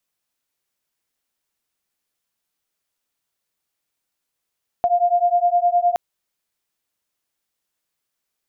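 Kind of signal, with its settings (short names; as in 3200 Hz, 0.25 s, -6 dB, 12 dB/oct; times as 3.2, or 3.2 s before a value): beating tones 698 Hz, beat 9.7 Hz, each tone -17.5 dBFS 1.12 s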